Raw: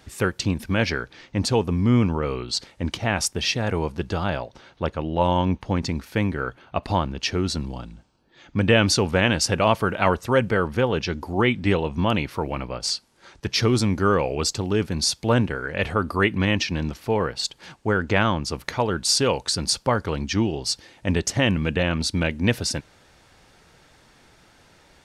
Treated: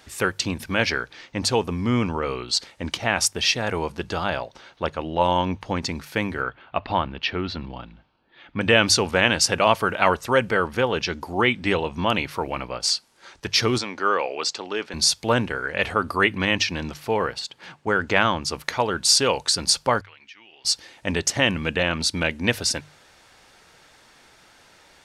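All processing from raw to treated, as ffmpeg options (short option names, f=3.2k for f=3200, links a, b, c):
-filter_complex "[0:a]asettb=1/sr,asplit=3[a][b][c];[a]atrim=end=6.424[d];[b]atrim=start=6.42:end=8.61,asetpts=PTS-STARTPTS,afade=t=in:d=0.004:c=qsin,afade=t=out:st=2.186:d=0.004:c=qsin,lowpass=f=3.6k:w=0.5412,lowpass=f=3.6k:w=1.3066,equalizer=f=450:w=1.5:g=-2[e];[c]atrim=start=8.606[f];[d][e]acrossfade=d=0.004:c1=hsin:c2=qsin[g];[g][f]acrossfade=d=0.004:c1=qsin:c2=hsin,asettb=1/sr,asplit=3[h][i][j];[h]atrim=end=13.784[k];[i]atrim=start=13.78:end=14.94,asetpts=PTS-STARTPTS,afade=t=in:d=0.004:c=qsin,afade=t=out:st=1.156:d=0.004:c=qsin,highpass=290,lowpass=4.8k,lowshelf=f=410:g=-6[l];[j]atrim=start=14.936[m];[k][l]acrossfade=d=0.004:c1=hsin:c2=qsin[n];[n][m]acrossfade=d=0.004:c1=qsin:c2=hsin,asettb=1/sr,asplit=3[o][p][q];[o]atrim=end=17.394[r];[p]atrim=start=17.39:end=17.87,asetpts=PTS-STARTPTS,afade=t=in:d=0.004:c=qsin,afade=t=out:st=0.476:d=0.004:c=qsin,bass=f=250:g=5,treble=f=4k:g=-9,acompressor=threshold=-37dB:ratio=1.5:attack=3.2:release=140:knee=1:detection=peak,highpass=100[s];[q]atrim=start=17.866[t];[r][s]acrossfade=d=0.004:c1=hsin:c2=qsin[u];[u][t]acrossfade=d=0.004:c1=qsin:c2=hsin,asettb=1/sr,asplit=3[v][w][x];[v]atrim=end=20.014[y];[w]atrim=start=20.01:end=20.65,asetpts=PTS-STARTPTS,afade=t=in:d=0.004:c=qsin,afade=t=out:st=0.636:d=0.004:c=qsin,bandpass=f=2.3k:t=q:w=2.3,acompressor=threshold=-49dB:ratio=3:attack=3.2:release=140:knee=1:detection=peak[z];[x]atrim=start=20.646[aa];[y][z]acrossfade=d=0.004:c1=hsin:c2=qsin[ab];[ab][aa]acrossfade=d=0.004:c1=qsin:c2=hsin,lowshelf=f=390:g=-9.5,bandreject=f=50:t=h:w=6,bandreject=f=100:t=h:w=6,bandreject=f=150:t=h:w=6,volume=3.5dB"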